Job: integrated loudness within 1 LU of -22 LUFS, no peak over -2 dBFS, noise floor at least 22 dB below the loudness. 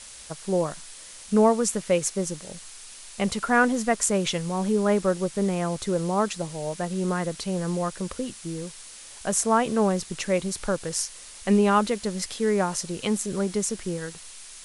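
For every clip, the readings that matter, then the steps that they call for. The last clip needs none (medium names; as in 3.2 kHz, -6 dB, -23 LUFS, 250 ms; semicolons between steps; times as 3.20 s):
noise floor -44 dBFS; noise floor target -48 dBFS; loudness -25.5 LUFS; peak level -6.0 dBFS; loudness target -22.0 LUFS
-> noise reduction 6 dB, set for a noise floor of -44 dBFS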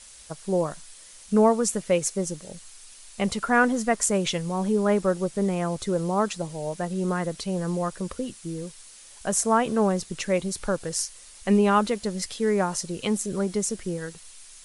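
noise floor -48 dBFS; loudness -25.5 LUFS; peak level -6.0 dBFS; loudness target -22.0 LUFS
-> trim +3.5 dB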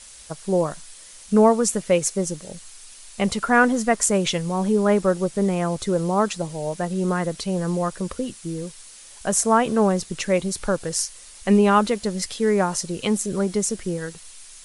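loudness -22.0 LUFS; peak level -2.5 dBFS; noise floor -44 dBFS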